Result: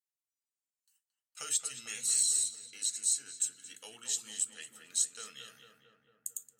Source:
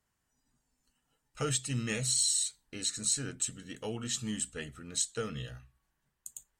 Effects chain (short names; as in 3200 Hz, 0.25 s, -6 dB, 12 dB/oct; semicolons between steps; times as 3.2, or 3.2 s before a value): HPF 95 Hz; gate with hold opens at -60 dBFS; differentiator; notches 50/100/150/200/250/300/350/400/450 Hz; in parallel at +1 dB: compressor, threshold -43 dBFS, peak gain reduction 17 dB; 1.75–3.82 on the sum: notch comb 610 Hz; on a send: darkening echo 0.224 s, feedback 69%, low-pass 1900 Hz, level -5.5 dB